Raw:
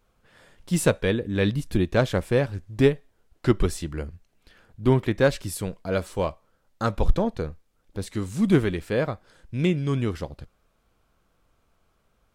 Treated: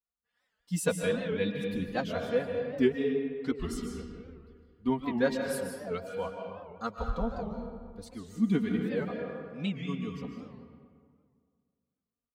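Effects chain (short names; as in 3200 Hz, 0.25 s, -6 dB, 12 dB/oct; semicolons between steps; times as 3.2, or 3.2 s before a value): per-bin expansion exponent 1.5; HPF 52 Hz; comb 4.2 ms, depth 94%; digital reverb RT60 2 s, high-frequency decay 0.55×, pre-delay 0.1 s, DRR 2 dB; record warp 78 rpm, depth 160 cents; gain -8.5 dB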